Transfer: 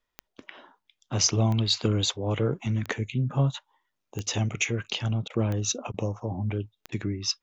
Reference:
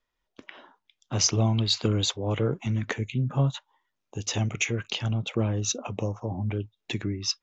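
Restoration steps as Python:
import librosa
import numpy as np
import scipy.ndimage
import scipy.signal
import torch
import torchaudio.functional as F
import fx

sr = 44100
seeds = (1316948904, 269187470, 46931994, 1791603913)

y = fx.fix_declick_ar(x, sr, threshold=10.0)
y = fx.fix_interpolate(y, sr, at_s=(5.28, 5.92, 6.9), length_ms=19.0)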